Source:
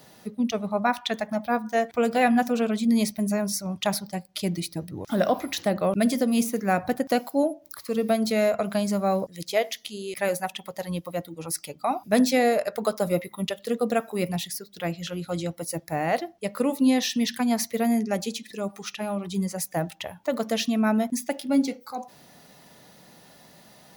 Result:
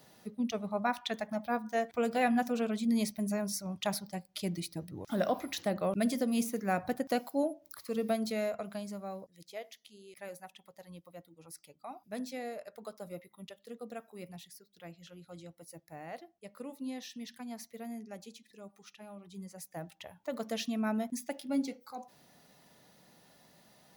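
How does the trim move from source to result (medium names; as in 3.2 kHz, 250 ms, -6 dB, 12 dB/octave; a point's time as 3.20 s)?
8.08 s -8 dB
9.25 s -19.5 dB
19.26 s -19.5 dB
20.45 s -10 dB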